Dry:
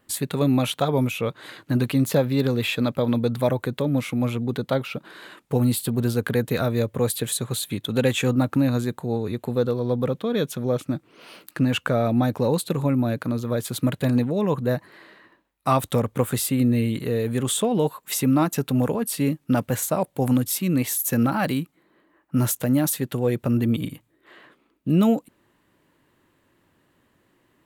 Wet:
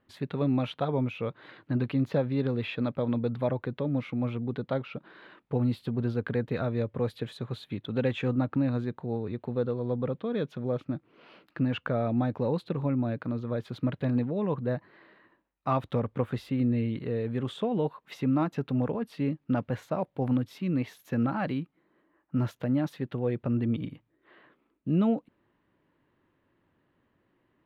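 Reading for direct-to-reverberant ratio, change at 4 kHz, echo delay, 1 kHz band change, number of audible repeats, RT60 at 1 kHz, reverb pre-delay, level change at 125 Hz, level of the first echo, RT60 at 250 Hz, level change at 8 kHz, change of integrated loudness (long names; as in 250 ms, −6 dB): no reverb audible, −13.5 dB, no echo audible, −7.5 dB, no echo audible, no reverb audible, no reverb audible, −6.0 dB, no echo audible, no reverb audible, below −30 dB, −7.0 dB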